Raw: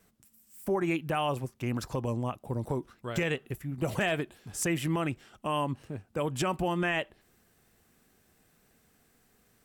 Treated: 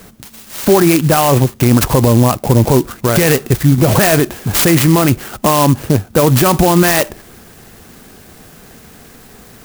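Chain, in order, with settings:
boost into a limiter +28.5 dB
converter with an unsteady clock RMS 0.077 ms
level −1 dB

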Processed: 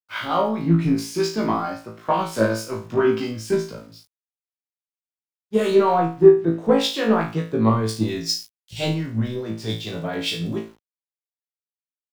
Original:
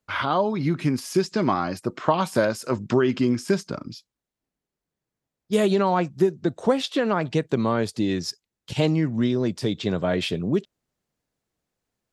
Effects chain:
running median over 3 samples
in parallel at −6 dB: soft clipping −21 dBFS, distortion −9 dB
on the sum: two-band tremolo in antiphase 4.5 Hz, depth 50%, crossover 560 Hz
on a send: flutter between parallel walls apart 3.1 metres, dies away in 0.47 s
on the sum: centre clipping without the shift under −39.5 dBFS
multiband upward and downward expander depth 100%
level −2.5 dB

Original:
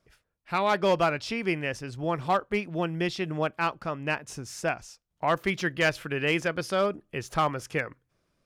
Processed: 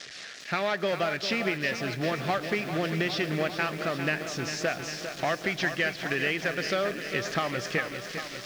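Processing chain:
spike at every zero crossing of −30 dBFS
high-shelf EQ 2,600 Hz +4.5 dB
in parallel at −7.5 dB: wrap-around overflow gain 26.5 dB
on the sum: loudspeaker in its box 140–5,100 Hz, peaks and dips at 650 Hz +3 dB, 950 Hz −10 dB, 1,800 Hz +7 dB
downward compressor, threshold −28 dBFS, peak gain reduction 12 dB
convolution reverb RT60 4.3 s, pre-delay 75 ms, DRR 18 dB
feedback echo at a low word length 400 ms, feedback 80%, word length 8 bits, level −9 dB
level +3 dB

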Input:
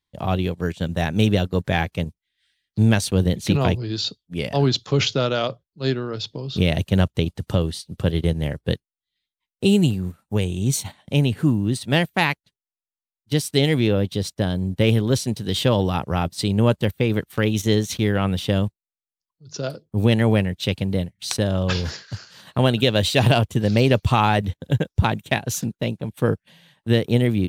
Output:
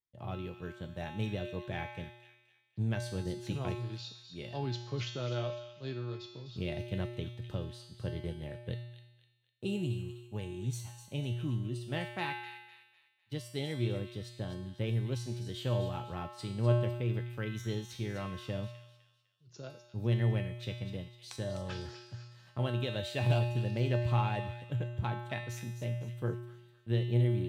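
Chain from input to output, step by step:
high-shelf EQ 4,400 Hz −7 dB
tuned comb filter 120 Hz, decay 0.97 s, harmonics odd, mix 90%
on a send: delay with a high-pass on its return 252 ms, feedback 38%, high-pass 2,200 Hz, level −9 dB

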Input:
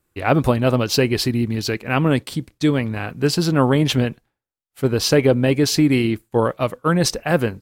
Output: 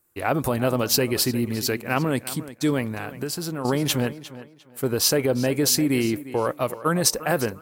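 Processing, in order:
parametric band 3,400 Hz −10 dB 2.1 octaves
brickwall limiter −11.5 dBFS, peak gain reduction 6.5 dB
spectral tilt +2.5 dB per octave
tape delay 353 ms, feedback 27%, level −14.5 dB, low-pass 5,800 Hz
0:02.91–0:03.65: downward compressor 6 to 1, threshold −28 dBFS, peak gain reduction 8.5 dB
level +1.5 dB

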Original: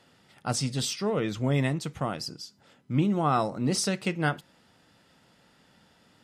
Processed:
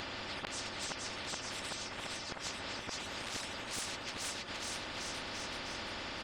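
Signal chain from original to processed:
random phases in long frames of 50 ms
mains-hum notches 60/120/180 Hz
low-pass that shuts in the quiet parts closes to 460 Hz, open at −20.5 dBFS
bass and treble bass −6 dB, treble +12 dB
comb filter 3.4 ms, depth 71%
in parallel at +3 dB: upward compression, threshold −33 dBFS
on the sum: wave folding −13 dBFS
gate with flip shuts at −26 dBFS, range −39 dB
high-frequency loss of the air 51 metres
on a send: bouncing-ball delay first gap 470 ms, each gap 0.9×, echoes 5
on the sum: every bin compressed towards the loudest bin 10 to 1
level +4 dB

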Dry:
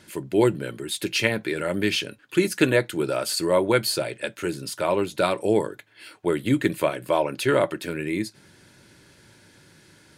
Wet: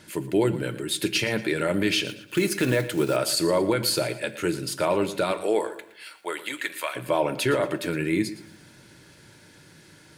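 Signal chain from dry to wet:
0:02.07–0:03.17: one scale factor per block 5 bits
0:05.32–0:06.95: high-pass filter 400 Hz → 1,300 Hz 12 dB per octave
brickwall limiter −14.5 dBFS, peak gain reduction 10.5 dB
rectangular room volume 1,000 cubic metres, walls furnished, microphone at 0.51 metres
feedback echo at a low word length 115 ms, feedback 35%, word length 9 bits, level −15 dB
level +1.5 dB

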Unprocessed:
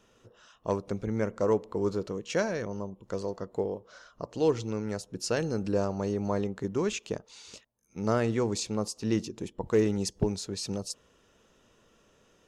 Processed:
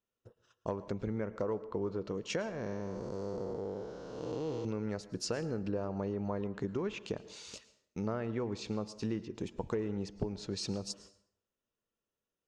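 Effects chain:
0:02.49–0:04.65: spectrum smeared in time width 463 ms
noise gate −54 dBFS, range −29 dB
treble cut that deepens with the level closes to 2,700 Hz, closed at −26.5 dBFS
downward compressor 6 to 1, threshold −32 dBFS, peak gain reduction 12 dB
dense smooth reverb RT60 0.67 s, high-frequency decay 0.75×, pre-delay 95 ms, DRR 15.5 dB

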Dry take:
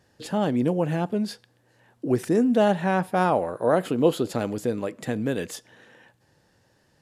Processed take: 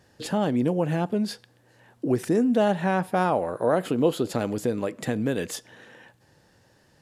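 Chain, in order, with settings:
downward compressor 1.5 to 1, threshold −30 dBFS, peak gain reduction 6 dB
level +3.5 dB

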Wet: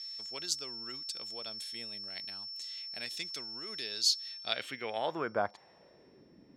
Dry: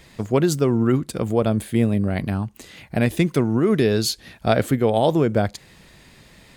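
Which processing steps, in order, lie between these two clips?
steady tone 5,400 Hz −40 dBFS
band-pass filter sweep 5,100 Hz → 290 Hz, 0:04.27–0:06.35

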